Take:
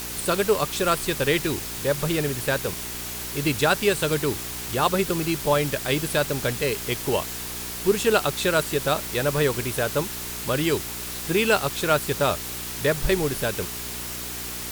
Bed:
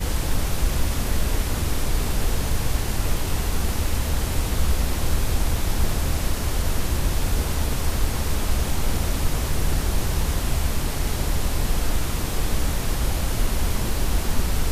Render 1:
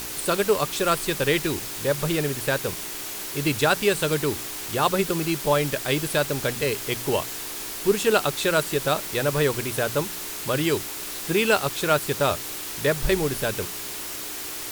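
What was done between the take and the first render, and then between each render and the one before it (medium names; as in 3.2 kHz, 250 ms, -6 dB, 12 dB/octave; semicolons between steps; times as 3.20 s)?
de-hum 60 Hz, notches 4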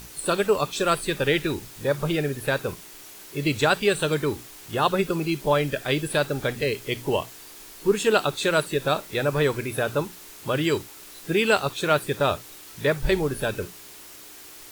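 noise print and reduce 11 dB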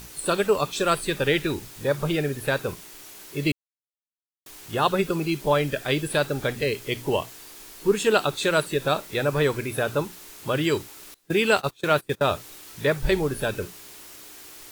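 3.52–4.46 s: mute; 11.14–12.31 s: gate -29 dBFS, range -23 dB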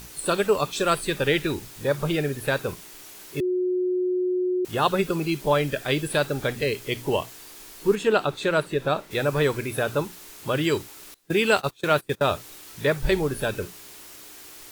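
3.40–4.65 s: bleep 364 Hz -21 dBFS; 7.95–9.11 s: treble shelf 4 kHz -11.5 dB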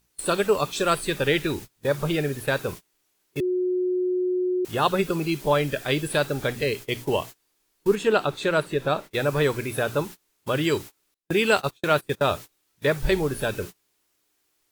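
gate -35 dBFS, range -27 dB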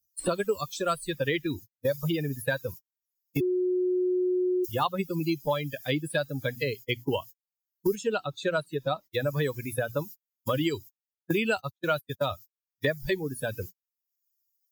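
expander on every frequency bin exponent 2; three bands compressed up and down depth 100%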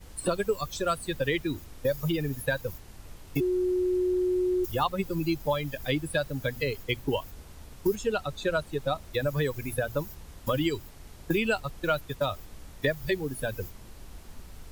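add bed -23.5 dB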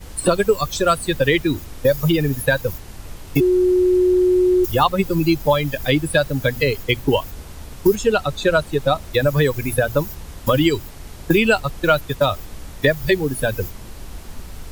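trim +11 dB; peak limiter -3 dBFS, peak gain reduction 1 dB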